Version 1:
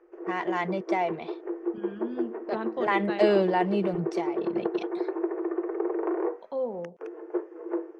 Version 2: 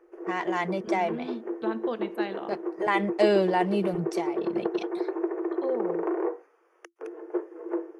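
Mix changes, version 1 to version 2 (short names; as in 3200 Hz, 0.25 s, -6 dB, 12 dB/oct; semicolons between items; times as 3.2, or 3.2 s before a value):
second voice: entry -0.90 s; master: remove air absorption 90 m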